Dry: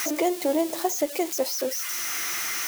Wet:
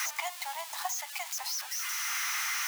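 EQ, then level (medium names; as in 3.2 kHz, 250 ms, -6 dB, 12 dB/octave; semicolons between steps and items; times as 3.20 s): steep high-pass 790 Hz 72 dB/octave; treble shelf 5.6 kHz -7 dB; 0.0 dB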